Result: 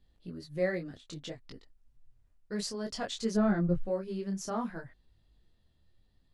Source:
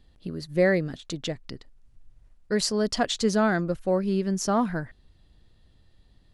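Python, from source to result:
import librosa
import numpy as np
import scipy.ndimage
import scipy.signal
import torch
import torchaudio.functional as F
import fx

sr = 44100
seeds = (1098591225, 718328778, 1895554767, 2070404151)

y = fx.riaa(x, sr, side='playback', at=(3.34, 3.85), fade=0.02)
y = fx.detune_double(y, sr, cents=20)
y = y * librosa.db_to_amplitude(-6.5)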